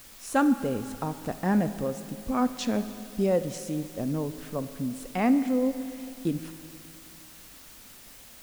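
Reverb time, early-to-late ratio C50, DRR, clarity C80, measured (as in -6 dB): 2.7 s, 11.5 dB, 10.5 dB, 12.0 dB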